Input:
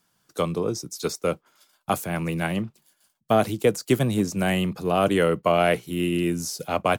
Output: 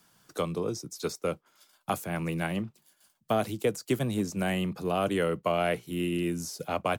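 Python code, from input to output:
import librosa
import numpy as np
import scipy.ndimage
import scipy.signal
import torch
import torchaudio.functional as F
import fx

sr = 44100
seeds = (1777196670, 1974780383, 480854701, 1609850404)

y = fx.band_squash(x, sr, depth_pct=40)
y = y * librosa.db_to_amplitude(-6.5)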